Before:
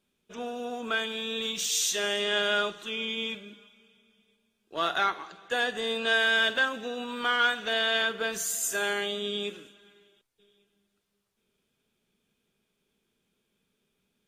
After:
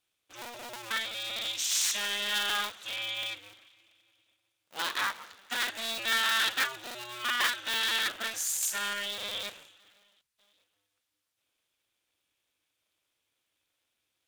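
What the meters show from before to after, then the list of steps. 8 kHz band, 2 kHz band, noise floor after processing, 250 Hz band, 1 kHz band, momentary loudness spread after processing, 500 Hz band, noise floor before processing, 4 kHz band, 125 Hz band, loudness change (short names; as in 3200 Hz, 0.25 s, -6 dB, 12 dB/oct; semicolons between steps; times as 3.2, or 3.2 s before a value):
0.0 dB, -4.0 dB, -82 dBFS, -12.0 dB, -4.0 dB, 14 LU, -14.0 dB, -78 dBFS, -1.0 dB, n/a, -2.0 dB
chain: cycle switcher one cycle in 2, inverted; tilt shelf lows -8 dB, about 850 Hz; gain -8 dB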